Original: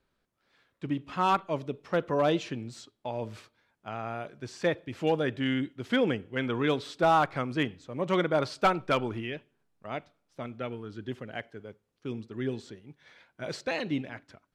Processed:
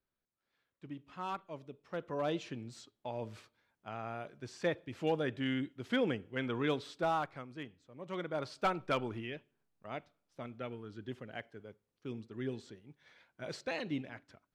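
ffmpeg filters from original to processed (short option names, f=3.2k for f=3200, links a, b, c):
-af "volume=4dB,afade=t=in:st=1.8:d=0.97:silence=0.375837,afade=t=out:st=6.74:d=0.73:silence=0.298538,afade=t=in:st=8.01:d=0.86:silence=0.316228"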